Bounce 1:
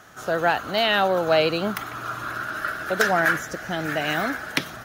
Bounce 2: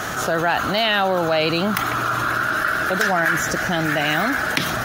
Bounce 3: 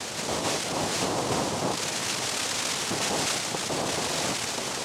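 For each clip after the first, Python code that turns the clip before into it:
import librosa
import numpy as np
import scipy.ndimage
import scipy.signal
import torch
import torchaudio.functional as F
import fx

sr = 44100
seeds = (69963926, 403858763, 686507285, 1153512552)

y1 = fx.dynamic_eq(x, sr, hz=480.0, q=2.0, threshold_db=-38.0, ratio=4.0, max_db=-5)
y1 = fx.env_flatten(y1, sr, amount_pct=70)
y2 = fx.delta_mod(y1, sr, bps=16000, step_db=-21.0)
y2 = fx.noise_vocoder(y2, sr, seeds[0], bands=2)
y2 = y2 * 10.0 ** (-8.0 / 20.0)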